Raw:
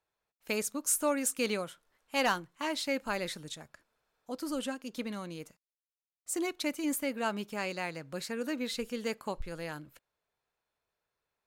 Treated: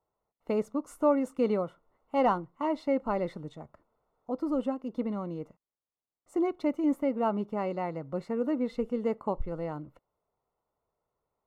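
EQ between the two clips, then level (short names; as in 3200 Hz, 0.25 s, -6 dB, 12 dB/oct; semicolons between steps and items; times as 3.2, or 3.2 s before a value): polynomial smoothing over 65 samples; +6.0 dB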